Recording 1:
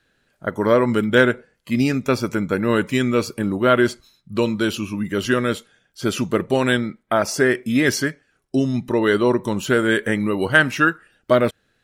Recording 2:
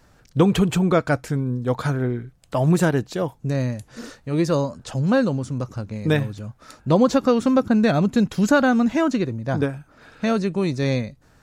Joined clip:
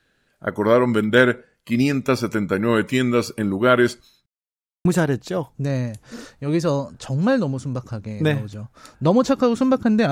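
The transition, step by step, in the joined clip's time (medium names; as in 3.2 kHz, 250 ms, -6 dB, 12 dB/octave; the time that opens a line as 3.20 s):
recording 1
4.26–4.85 s: mute
4.85 s: go over to recording 2 from 2.70 s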